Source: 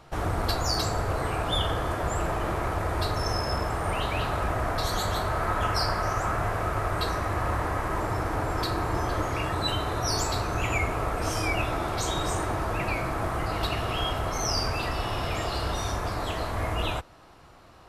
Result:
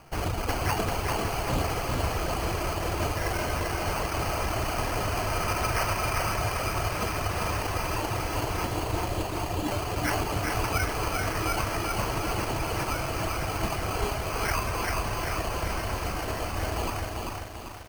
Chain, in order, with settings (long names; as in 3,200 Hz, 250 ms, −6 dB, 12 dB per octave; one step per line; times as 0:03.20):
reverb reduction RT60 1.6 s
0:08.64–0:09.66: parametric band 1,500 Hz −12 dB 0.58 octaves
decimation without filtering 12×
single-tap delay 432 ms −9.5 dB
feedback echo at a low word length 392 ms, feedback 55%, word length 8 bits, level −3 dB